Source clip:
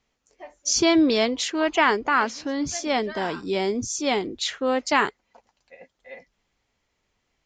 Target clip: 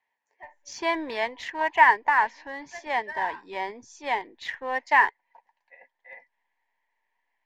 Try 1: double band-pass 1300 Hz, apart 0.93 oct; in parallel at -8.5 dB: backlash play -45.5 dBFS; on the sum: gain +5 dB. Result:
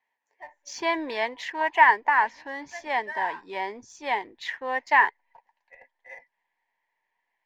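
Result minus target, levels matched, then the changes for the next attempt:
backlash: distortion -9 dB
change: backlash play -35 dBFS

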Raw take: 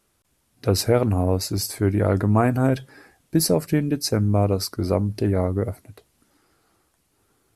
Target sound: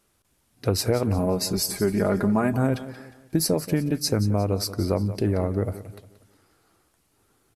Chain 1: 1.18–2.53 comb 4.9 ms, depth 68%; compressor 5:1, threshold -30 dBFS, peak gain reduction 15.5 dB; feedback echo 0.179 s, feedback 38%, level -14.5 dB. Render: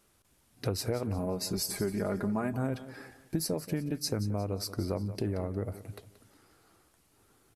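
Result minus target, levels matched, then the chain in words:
compressor: peak gain reduction +9.5 dB
1.18–2.53 comb 4.9 ms, depth 68%; compressor 5:1, threshold -18 dBFS, peak gain reduction 6 dB; feedback echo 0.179 s, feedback 38%, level -14.5 dB

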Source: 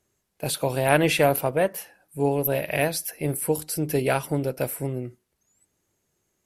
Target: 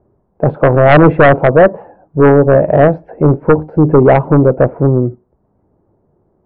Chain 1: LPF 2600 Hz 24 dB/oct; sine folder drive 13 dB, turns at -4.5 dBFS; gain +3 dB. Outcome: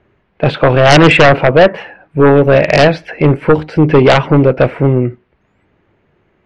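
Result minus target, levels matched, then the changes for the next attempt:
2000 Hz band +4.0 dB
change: LPF 930 Hz 24 dB/oct

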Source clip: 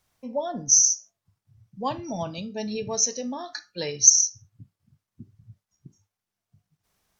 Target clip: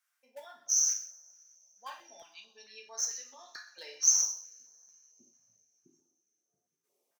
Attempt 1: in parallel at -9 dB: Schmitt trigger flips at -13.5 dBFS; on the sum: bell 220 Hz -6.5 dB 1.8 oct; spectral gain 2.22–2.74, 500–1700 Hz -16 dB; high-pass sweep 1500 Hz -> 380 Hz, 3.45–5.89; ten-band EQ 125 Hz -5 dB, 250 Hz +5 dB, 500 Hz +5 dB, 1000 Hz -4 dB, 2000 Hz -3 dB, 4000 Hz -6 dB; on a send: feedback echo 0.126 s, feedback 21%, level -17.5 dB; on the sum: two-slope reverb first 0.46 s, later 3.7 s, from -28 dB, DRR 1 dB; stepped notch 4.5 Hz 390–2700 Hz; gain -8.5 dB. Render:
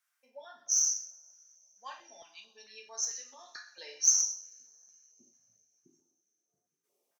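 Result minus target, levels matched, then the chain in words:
Schmitt trigger: distortion +5 dB
in parallel at -9 dB: Schmitt trigger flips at -20.5 dBFS; on the sum: bell 220 Hz -6.5 dB 1.8 oct; spectral gain 2.22–2.74, 500–1700 Hz -16 dB; high-pass sweep 1500 Hz -> 380 Hz, 3.45–5.89; ten-band EQ 125 Hz -5 dB, 250 Hz +5 dB, 500 Hz +5 dB, 1000 Hz -4 dB, 2000 Hz -3 dB, 4000 Hz -6 dB; on a send: feedback echo 0.126 s, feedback 21%, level -17.5 dB; on the sum: two-slope reverb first 0.46 s, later 3.7 s, from -28 dB, DRR 1 dB; stepped notch 4.5 Hz 390–2700 Hz; gain -8.5 dB

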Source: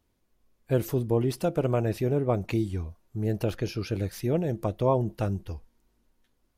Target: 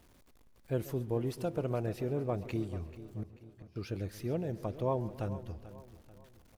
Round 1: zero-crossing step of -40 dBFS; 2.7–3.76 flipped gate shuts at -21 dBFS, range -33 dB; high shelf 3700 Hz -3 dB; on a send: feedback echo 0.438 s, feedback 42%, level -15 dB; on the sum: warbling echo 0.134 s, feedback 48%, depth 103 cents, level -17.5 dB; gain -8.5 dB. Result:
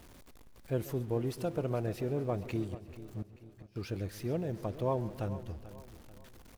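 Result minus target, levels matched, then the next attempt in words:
zero-crossing step: distortion +8 dB
zero-crossing step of -48 dBFS; 2.7–3.76 flipped gate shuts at -21 dBFS, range -33 dB; high shelf 3700 Hz -3 dB; on a send: feedback echo 0.438 s, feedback 42%, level -15 dB; on the sum: warbling echo 0.134 s, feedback 48%, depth 103 cents, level -17.5 dB; gain -8.5 dB

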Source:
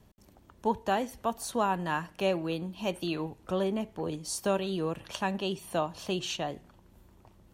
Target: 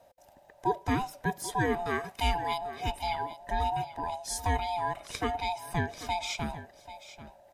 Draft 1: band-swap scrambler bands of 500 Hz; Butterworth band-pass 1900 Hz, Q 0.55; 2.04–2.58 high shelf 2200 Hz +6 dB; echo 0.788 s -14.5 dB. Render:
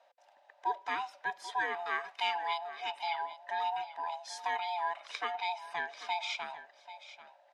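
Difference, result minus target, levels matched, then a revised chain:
2000 Hz band +3.5 dB
band-swap scrambler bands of 500 Hz; 2.04–2.58 high shelf 2200 Hz +6 dB; echo 0.788 s -14.5 dB

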